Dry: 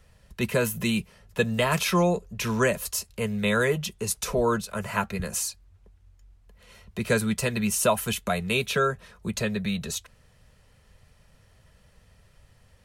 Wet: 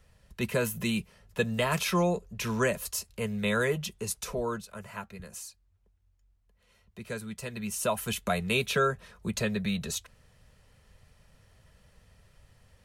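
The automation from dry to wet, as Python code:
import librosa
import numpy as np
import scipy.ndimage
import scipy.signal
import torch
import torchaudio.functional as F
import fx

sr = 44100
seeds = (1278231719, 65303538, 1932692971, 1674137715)

y = fx.gain(x, sr, db=fx.line((3.95, -4.0), (5.04, -13.5), (7.3, -13.5), (8.28, -2.0)))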